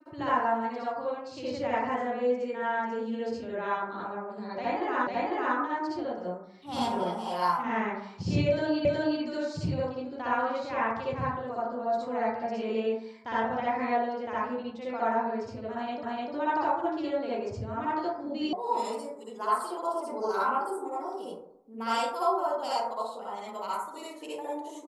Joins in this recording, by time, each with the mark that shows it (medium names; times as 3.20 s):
5.07 s: repeat of the last 0.5 s
8.85 s: repeat of the last 0.37 s
16.03 s: repeat of the last 0.3 s
18.53 s: sound stops dead